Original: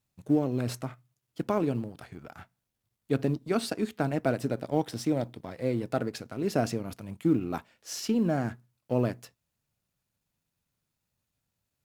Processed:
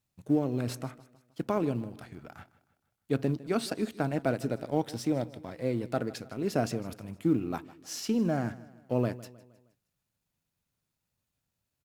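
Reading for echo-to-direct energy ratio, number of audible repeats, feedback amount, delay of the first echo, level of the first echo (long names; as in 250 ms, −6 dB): −18.0 dB, 3, 46%, 156 ms, −19.0 dB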